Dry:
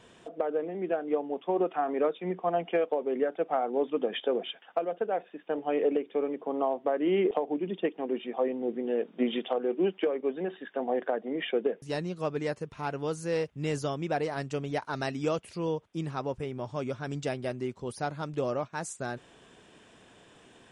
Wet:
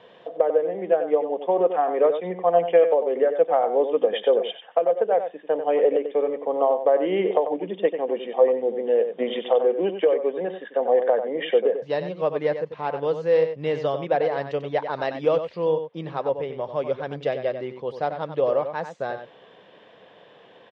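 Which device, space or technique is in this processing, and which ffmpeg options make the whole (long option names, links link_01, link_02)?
kitchen radio: -filter_complex "[0:a]highpass=220,equalizer=frequency=250:width_type=q:width=4:gain=-9,equalizer=frequency=350:width_type=q:width=4:gain=-7,equalizer=frequency=520:width_type=q:width=4:gain=7,equalizer=frequency=1400:width_type=q:width=4:gain=-7,equalizer=frequency=2500:width_type=q:width=4:gain=-6,lowpass=frequency=3500:width=0.5412,lowpass=frequency=3500:width=1.3066,asettb=1/sr,asplit=3[link_01][link_02][link_03];[link_01]atrim=end=17.194[link_04];[link_02]atrim=start=17.19:end=17.62,asetpts=PTS-STARTPTS,afade=type=in:duration=0.004:curve=qsin,afade=type=out:start_time=0.426:duration=0.004:curve=qsin,equalizer=frequency=890:width_type=o:width=0.24:gain=-6.5[link_05];[link_03]atrim=start=17.616[link_06];[link_04][link_05]acrossfade=duration=0.004:curve1=hsin:curve2=qsin[link_07];[link_07][link_06]acrossfade=duration=0.004:curve1=qsin:curve2=hsin,asplit=2[link_08][link_09];[link_09]adelay=93.29,volume=-9dB,highshelf=frequency=4000:gain=-2.1[link_10];[link_08][link_10]amix=inputs=2:normalize=0,volume=7dB"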